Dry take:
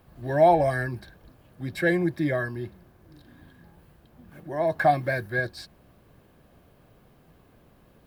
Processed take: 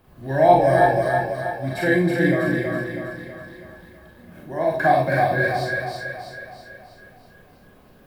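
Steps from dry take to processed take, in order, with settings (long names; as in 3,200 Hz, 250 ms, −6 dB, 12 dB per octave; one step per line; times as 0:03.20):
echo with a time of its own for lows and highs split 440 Hz, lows 234 ms, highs 324 ms, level −3 dB
four-comb reverb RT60 0.31 s, combs from 30 ms, DRR −2 dB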